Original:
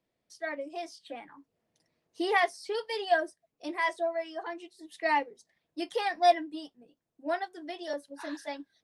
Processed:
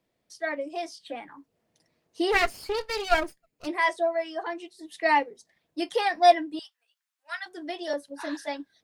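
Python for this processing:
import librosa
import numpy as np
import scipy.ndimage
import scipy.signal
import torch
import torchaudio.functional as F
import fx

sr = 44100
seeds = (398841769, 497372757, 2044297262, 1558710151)

y = fx.lower_of_two(x, sr, delay_ms=0.44, at=(2.31, 3.66), fade=0.02)
y = fx.highpass(y, sr, hz=1300.0, slope=24, at=(6.59, 7.46))
y = y * librosa.db_to_amplitude(5.0)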